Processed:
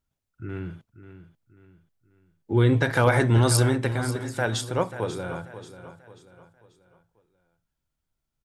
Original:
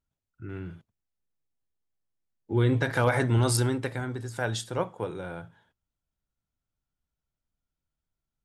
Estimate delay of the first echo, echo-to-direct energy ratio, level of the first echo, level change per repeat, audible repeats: 538 ms, -12.5 dB, -13.0 dB, -8.0 dB, 3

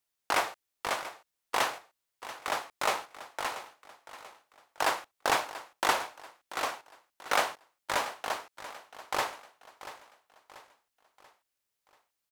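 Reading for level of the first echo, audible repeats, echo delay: -14.5 dB, 3, 686 ms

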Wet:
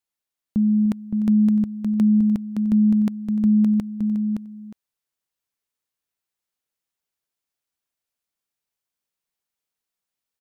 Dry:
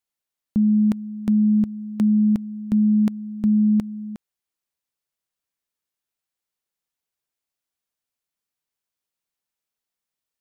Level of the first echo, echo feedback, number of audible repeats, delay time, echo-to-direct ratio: -17.0 dB, no regular repeats, 2, 299 ms, -4.5 dB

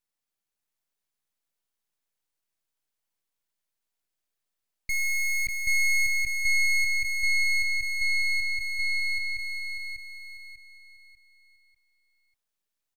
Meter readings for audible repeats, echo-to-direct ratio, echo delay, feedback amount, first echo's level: 4, -4.0 dB, 594 ms, 37%, -4.5 dB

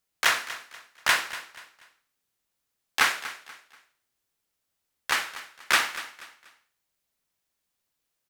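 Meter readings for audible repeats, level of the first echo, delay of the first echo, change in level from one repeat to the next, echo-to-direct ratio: 3, -15.0 dB, 241 ms, -9.5 dB, -14.5 dB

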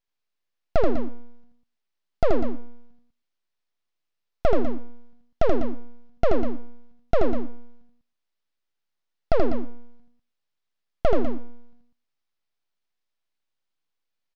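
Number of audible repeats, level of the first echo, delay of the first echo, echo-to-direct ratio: 4, -4.0 dB, 80 ms, -3.0 dB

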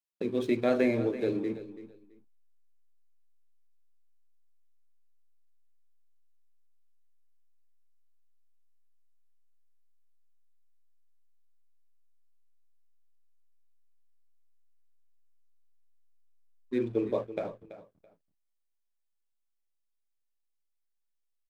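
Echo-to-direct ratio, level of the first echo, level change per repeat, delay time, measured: -14.0 dB, -14.0 dB, -13.5 dB, 332 ms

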